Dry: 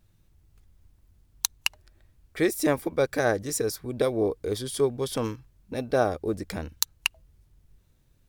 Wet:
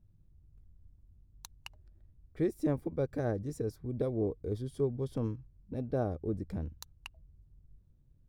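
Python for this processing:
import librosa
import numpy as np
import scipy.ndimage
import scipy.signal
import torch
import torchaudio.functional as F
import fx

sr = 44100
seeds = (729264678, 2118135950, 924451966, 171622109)

y = fx.curve_eq(x, sr, hz=(150.0, 2100.0, 13000.0), db=(0, -21, -25))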